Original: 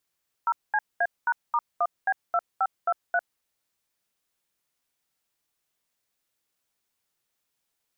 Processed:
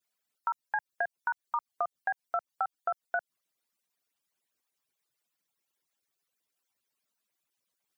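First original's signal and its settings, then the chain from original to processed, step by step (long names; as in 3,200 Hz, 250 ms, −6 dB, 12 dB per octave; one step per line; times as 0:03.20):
touch tones "0CA#*1B2523", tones 52 ms, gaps 215 ms, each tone −23 dBFS
harmonic-percussive split with one part muted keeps percussive
high-pass filter 110 Hz
downward compressor 3 to 1, threshold −29 dBFS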